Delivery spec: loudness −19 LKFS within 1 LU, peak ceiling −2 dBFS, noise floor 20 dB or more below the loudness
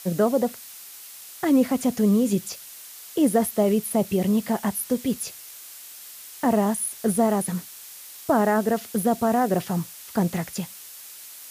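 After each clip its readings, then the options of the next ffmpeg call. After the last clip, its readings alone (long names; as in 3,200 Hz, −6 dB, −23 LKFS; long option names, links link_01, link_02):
background noise floor −43 dBFS; target noise floor −44 dBFS; integrated loudness −23.5 LKFS; sample peak −10.0 dBFS; target loudness −19.0 LKFS
→ -af "afftdn=noise_reduction=6:noise_floor=-43"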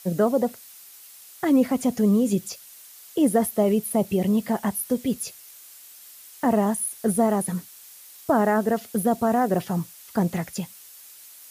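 background noise floor −47 dBFS; integrated loudness −24.0 LKFS; sample peak −10.0 dBFS; target loudness −19.0 LKFS
→ -af "volume=5dB"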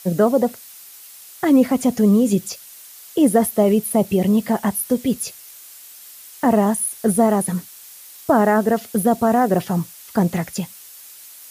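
integrated loudness −19.0 LKFS; sample peak −5.0 dBFS; background noise floor −42 dBFS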